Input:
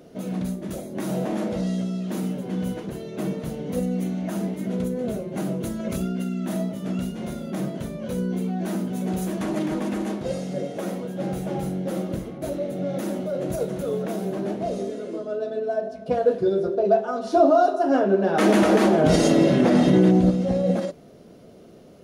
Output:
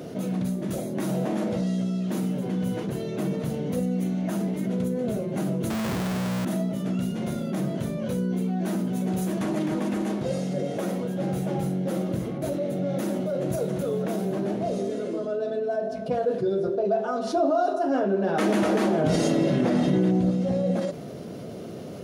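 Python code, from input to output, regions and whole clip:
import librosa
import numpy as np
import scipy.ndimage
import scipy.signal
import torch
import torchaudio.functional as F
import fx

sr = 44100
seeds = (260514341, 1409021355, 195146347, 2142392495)

y = fx.chain(x, sr, fx.lowpass(hz=2400.0, slope=12),
    fx.schmitt(flips_db=-44.5), at=(5.7, 6.45))
y = scipy.signal.sosfilt(scipy.signal.butter(2, 82.0, 'highpass', fs=sr, output='sos'), y)
y = fx.peak_eq(y, sr, hz=120.0, db=5.0, octaves=0.93)
y = fx.env_flatten(y, sr, amount_pct=50)
y = y * 10.0 ** (-7.5 / 20.0)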